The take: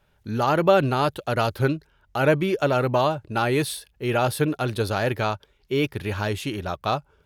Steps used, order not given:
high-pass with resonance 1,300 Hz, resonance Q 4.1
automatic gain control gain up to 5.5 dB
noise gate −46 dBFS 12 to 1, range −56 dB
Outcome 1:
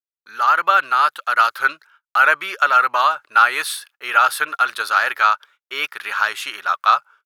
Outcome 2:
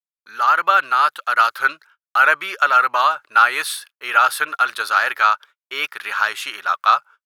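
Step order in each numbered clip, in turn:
automatic gain control, then noise gate, then high-pass with resonance
noise gate, then automatic gain control, then high-pass with resonance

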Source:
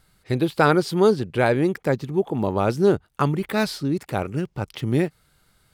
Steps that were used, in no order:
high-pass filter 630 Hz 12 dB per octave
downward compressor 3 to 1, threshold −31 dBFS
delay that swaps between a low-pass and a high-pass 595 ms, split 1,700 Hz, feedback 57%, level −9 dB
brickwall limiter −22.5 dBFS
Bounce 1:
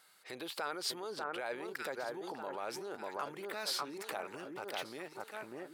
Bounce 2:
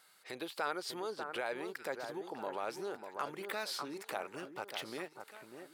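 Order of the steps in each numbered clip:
delay that swaps between a low-pass and a high-pass, then brickwall limiter, then downward compressor, then high-pass filter
downward compressor, then delay that swaps between a low-pass and a high-pass, then brickwall limiter, then high-pass filter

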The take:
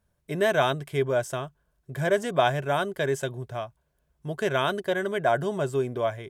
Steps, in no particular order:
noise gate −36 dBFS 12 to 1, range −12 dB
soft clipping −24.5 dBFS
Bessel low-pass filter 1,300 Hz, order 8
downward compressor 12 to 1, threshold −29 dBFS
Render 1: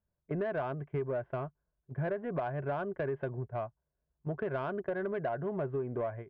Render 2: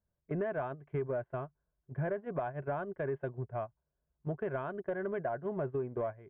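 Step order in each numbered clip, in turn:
Bessel low-pass filter, then noise gate, then downward compressor, then soft clipping
downward compressor, then soft clipping, then Bessel low-pass filter, then noise gate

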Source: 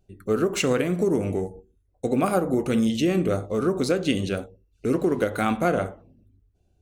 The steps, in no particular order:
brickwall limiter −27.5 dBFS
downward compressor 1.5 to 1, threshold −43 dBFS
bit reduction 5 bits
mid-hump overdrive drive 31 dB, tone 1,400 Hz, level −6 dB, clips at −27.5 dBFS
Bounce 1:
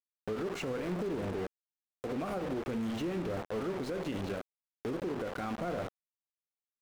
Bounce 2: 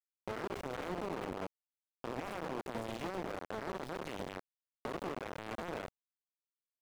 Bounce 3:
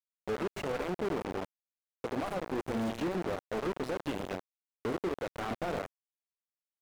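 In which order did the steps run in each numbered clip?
bit reduction, then mid-hump overdrive, then downward compressor, then brickwall limiter
brickwall limiter, then bit reduction, then mid-hump overdrive, then downward compressor
downward compressor, then bit reduction, then brickwall limiter, then mid-hump overdrive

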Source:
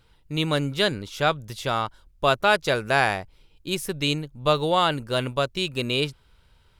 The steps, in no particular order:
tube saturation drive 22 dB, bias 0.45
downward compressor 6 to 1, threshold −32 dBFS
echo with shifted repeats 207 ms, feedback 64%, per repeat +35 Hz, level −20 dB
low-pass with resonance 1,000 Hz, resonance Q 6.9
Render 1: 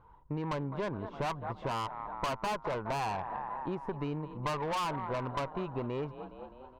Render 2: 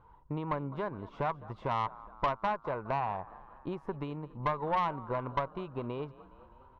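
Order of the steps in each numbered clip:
echo with shifted repeats, then low-pass with resonance, then tube saturation, then downward compressor
downward compressor, then low-pass with resonance, then echo with shifted repeats, then tube saturation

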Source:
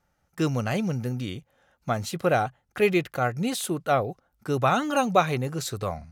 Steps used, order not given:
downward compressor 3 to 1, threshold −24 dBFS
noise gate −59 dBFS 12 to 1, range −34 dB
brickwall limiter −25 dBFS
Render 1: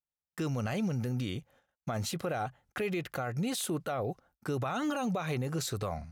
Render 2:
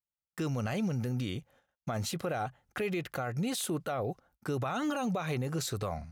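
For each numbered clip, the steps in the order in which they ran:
downward compressor, then noise gate, then brickwall limiter
noise gate, then downward compressor, then brickwall limiter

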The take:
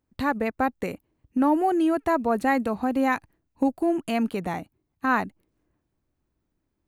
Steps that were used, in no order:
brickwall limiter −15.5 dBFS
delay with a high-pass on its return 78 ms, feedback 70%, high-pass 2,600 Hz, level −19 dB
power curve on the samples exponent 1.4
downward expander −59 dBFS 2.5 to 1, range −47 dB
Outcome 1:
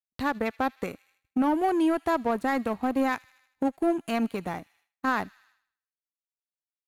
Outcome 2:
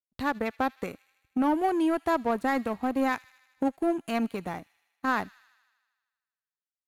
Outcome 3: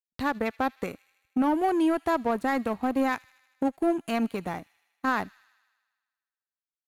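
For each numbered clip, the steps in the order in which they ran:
brickwall limiter, then power curve on the samples, then delay with a high-pass on its return, then downward expander
downward expander, then power curve on the samples, then delay with a high-pass on its return, then brickwall limiter
brickwall limiter, then power curve on the samples, then downward expander, then delay with a high-pass on its return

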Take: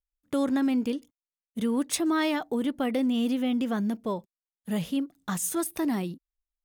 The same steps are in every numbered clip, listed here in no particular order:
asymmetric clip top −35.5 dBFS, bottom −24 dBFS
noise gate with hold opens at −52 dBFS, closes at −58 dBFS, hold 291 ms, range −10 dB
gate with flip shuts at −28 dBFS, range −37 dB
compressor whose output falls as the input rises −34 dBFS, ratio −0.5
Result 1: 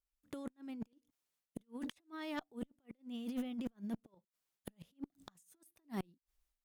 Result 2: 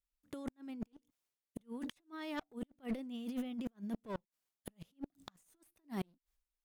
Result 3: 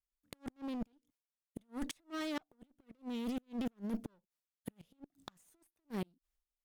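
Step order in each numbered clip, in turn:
noise gate with hold, then compressor whose output falls as the input rises, then gate with flip, then asymmetric clip
compressor whose output falls as the input rises, then asymmetric clip, then gate with flip, then noise gate with hold
asymmetric clip, then compressor whose output falls as the input rises, then gate with flip, then noise gate with hold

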